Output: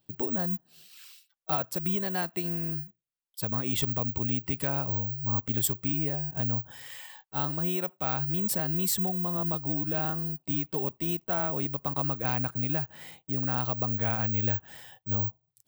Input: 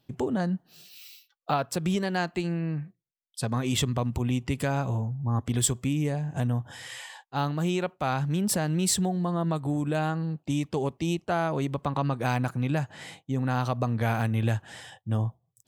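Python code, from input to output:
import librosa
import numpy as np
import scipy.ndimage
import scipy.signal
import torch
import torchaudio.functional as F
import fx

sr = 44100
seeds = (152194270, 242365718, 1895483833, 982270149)

y = (np.kron(x[::2], np.eye(2)[0]) * 2)[:len(x)]
y = F.gain(torch.from_numpy(y), -5.5).numpy()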